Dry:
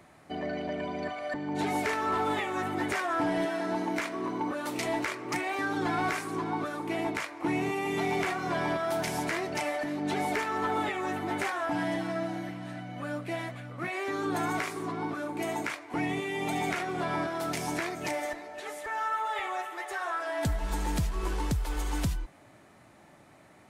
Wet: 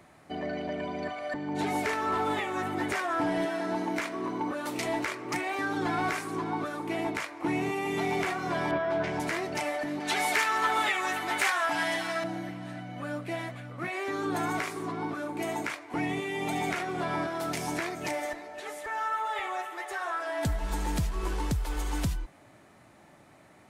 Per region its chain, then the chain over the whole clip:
8.71–9.2 LPF 2600 Hz + doubler 14 ms -3 dB
10–12.24 tilt shelf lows -10 dB, about 650 Hz + hard clip -18 dBFS
whole clip: dry

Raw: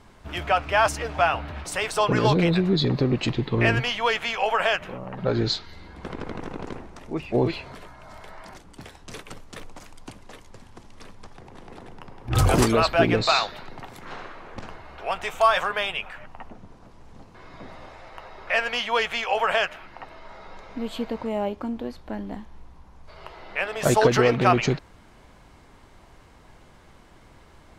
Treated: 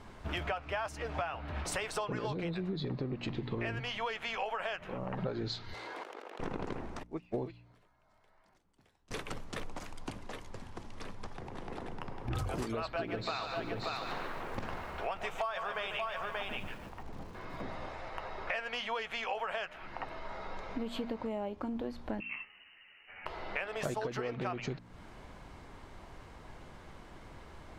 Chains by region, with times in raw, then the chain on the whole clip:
2.72–3.35 high shelf 5100 Hz -7 dB + mismatched tape noise reduction decoder only
5.74–6.4 self-modulated delay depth 0.35 ms + HPF 390 Hz 24 dB/oct + negative-ratio compressor -47 dBFS
7.03–9.11 high shelf 4800 Hz +4 dB + upward expander 2.5:1, over -36 dBFS
12.81–17.62 high shelf 7700 Hz -5 dB + echo 0.582 s -9 dB + lo-fi delay 0.145 s, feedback 35%, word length 8-bit, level -10 dB
22.2–23.26 HPF 220 Hz 6 dB/oct + inverted band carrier 2900 Hz + ensemble effect
whole clip: high shelf 4600 Hz -6 dB; de-hum 59.19 Hz, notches 5; compressor 12:1, threshold -34 dBFS; gain +1 dB

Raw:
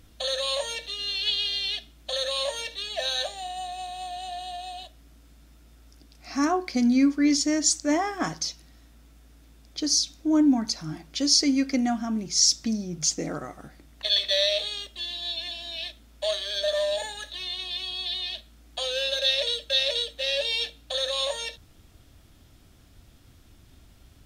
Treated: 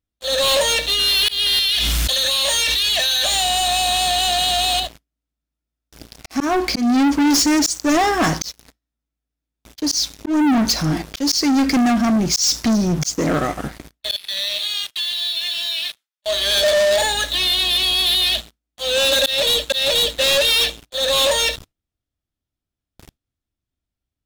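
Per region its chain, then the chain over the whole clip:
1.59–4.8 passive tone stack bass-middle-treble 5-5-5 + fast leveller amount 100%
14.16–16.26 HPF 1300 Hz + compressor 5:1, threshold -38 dBFS
whole clip: gate with hold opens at -41 dBFS; auto swell 0.302 s; sample leveller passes 5

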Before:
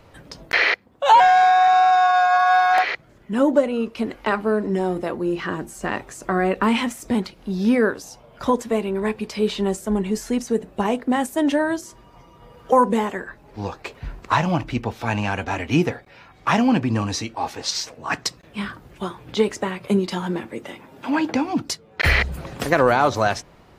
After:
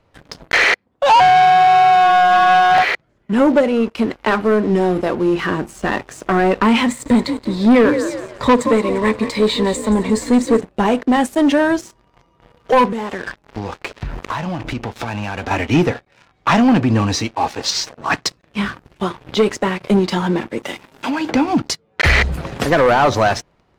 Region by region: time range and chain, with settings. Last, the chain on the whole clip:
6.88–10.61 ripple EQ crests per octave 1, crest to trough 12 dB + frequency-shifting echo 0.175 s, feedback 42%, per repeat +42 Hz, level -13 dB
12.85–15.51 sample leveller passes 2 + compressor 12:1, threshold -28 dBFS
20.63–21.3 high shelf 3000 Hz +10 dB + compressor 10:1, threshold -24 dBFS
whole clip: sample leveller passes 3; high shelf 9800 Hz -11.5 dB; gain -3.5 dB

